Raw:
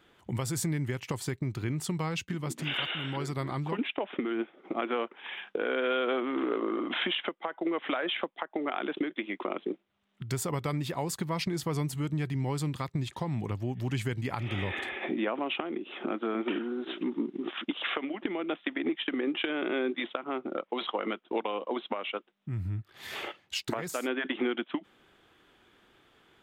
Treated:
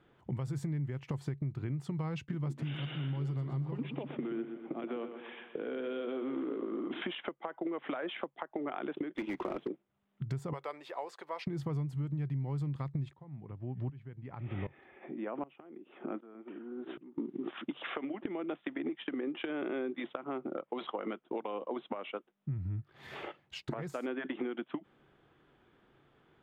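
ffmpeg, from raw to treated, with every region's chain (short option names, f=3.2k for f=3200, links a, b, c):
-filter_complex "[0:a]asettb=1/sr,asplit=3[a][b][c];[a]atrim=end=2.624[d];[b]atrim=start=2.62:end=7.02,asetpts=PTS-STARTPTS,afade=t=in:d=0.004:c=qsin,afade=t=out:st=4.396:d=0.004:c=qsin,acrossover=split=420|3000[e][f][g];[f]acompressor=threshold=-42dB:ratio=3:attack=3.2:release=140:knee=2.83:detection=peak[h];[e][h][g]amix=inputs=3:normalize=0,aecho=1:1:123|246|369|492|615|738|861:0.316|0.187|0.11|0.0649|0.0383|0.0226|0.0133,atrim=end_sample=194040[i];[c]atrim=start=7.016[j];[d][i]acrossfade=d=0.004:c1=hsin:c2=qsin[k];[k][j]acrossfade=d=0.004:c1=qsin:c2=hsin,asettb=1/sr,asplit=3[l][m][n];[l]atrim=end=9.154[o];[m]atrim=start=9.15:end=9.68,asetpts=PTS-STARTPTS,afade=t=in:d=0.004:c=qsin,afade=t=out:st=0.526:d=0.004:c=qsin,aeval=exprs='val(0)+0.5*0.0188*sgn(val(0))':c=same,acrusher=bits=5:mix=0:aa=0.5[p];[n]atrim=start=9.676[q];[o][p]acrossfade=d=0.004:c1=hsin:c2=qsin[r];[r][q]acrossfade=d=0.004:c1=qsin:c2=hsin,asettb=1/sr,asplit=3[s][t][u];[s]atrim=end=10.534[v];[t]atrim=start=10.53:end=11.47,asetpts=PTS-STARTPTS,afade=t=in:d=0.004:c=qsin,afade=t=out:st=0.936:d=0.004:c=qsin,acrossover=split=5700[w][x];[x]acompressor=threshold=-47dB:ratio=4:attack=1:release=60[y];[w][y]amix=inputs=2:normalize=0,highpass=f=480:w=0.5412,highpass=f=480:w=1.3066[z];[u]atrim=start=11.466[aa];[v][z]acrossfade=d=0.004:c1=hsin:c2=qsin[ab];[ab][aa]acrossfade=d=0.004:c1=qsin:c2=hsin,asettb=1/sr,asplit=3[ac][ad][ae];[ac]atrim=end=13.134[af];[ad]atrim=start=13.13:end=17.18,asetpts=PTS-STARTPTS,afade=t=in:d=0.004:c=qsin,afade=t=out:st=4.046:d=0.004:c=qsin,lowpass=2.9k,aeval=exprs='val(0)*pow(10,-22*if(lt(mod(-1.3*n/s,1),2*abs(-1.3)/1000),1-mod(-1.3*n/s,1)/(2*abs(-1.3)/1000),(mod(-1.3*n/s,1)-2*abs(-1.3)/1000)/(1-2*abs(-1.3)/1000))/20)':c=same[ag];[ae]atrim=start=17.176[ah];[af][ag]acrossfade=d=0.004:c1=hsin:c2=qsin[ai];[ai][ah]acrossfade=d=0.004:c1=qsin:c2=hsin,lowpass=f=1.1k:p=1,equalizer=f=140:w=5.9:g=10,acompressor=threshold=-31dB:ratio=6,volume=-1.5dB"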